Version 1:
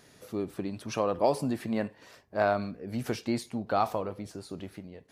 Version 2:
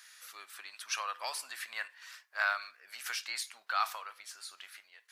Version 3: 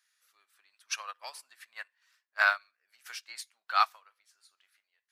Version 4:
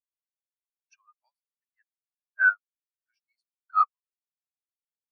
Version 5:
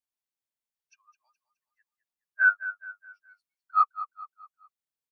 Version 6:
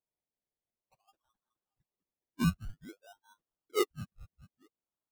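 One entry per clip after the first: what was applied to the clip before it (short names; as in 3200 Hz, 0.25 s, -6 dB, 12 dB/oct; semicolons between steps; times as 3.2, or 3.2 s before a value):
Chebyshev high-pass 1400 Hz, order 3; gain +5.5 dB
upward expander 2.5:1, over -46 dBFS; gain +8.5 dB
spectral expander 2.5:1
feedback echo 0.21 s, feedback 41%, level -13.5 dB
decimation with a swept rate 26×, swing 60% 0.53 Hz; gain -7.5 dB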